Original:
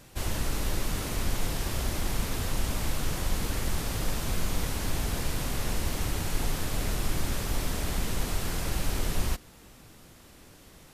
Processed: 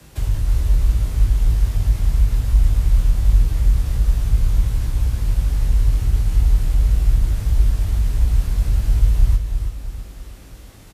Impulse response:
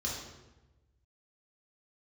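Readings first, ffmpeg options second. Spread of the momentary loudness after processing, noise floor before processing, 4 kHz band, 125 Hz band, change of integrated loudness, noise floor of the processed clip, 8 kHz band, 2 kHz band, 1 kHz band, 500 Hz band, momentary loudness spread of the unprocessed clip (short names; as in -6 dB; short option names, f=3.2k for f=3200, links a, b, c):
4 LU, -53 dBFS, -4.5 dB, +14.5 dB, +12.0 dB, -41 dBFS, -4.5 dB, -4.5 dB, -4.5 dB, -4.0 dB, 1 LU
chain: -filter_complex "[0:a]lowshelf=f=99:g=9,acrossover=split=110[a][b];[b]acompressor=threshold=-42dB:ratio=6[c];[a][c]amix=inputs=2:normalize=0,afreqshift=21,asplit=2[d][e];[e]adelay=19,volume=-5dB[f];[d][f]amix=inputs=2:normalize=0,aecho=1:1:326|652|978|1304|1630:0.422|0.186|0.0816|0.0359|0.0158,volume=3.5dB"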